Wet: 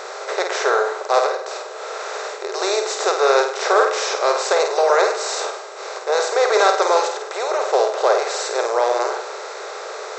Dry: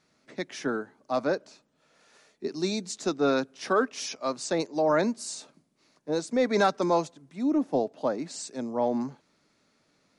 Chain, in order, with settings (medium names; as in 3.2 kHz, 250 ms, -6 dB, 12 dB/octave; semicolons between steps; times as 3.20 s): spectral levelling over time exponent 0.4; 1.26–2.52 s: compression, threshold -27 dBFS, peak gain reduction 10 dB; brick-wall FIR band-pass 370–8100 Hz; flutter echo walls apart 8.7 m, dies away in 0.49 s; trim +4.5 dB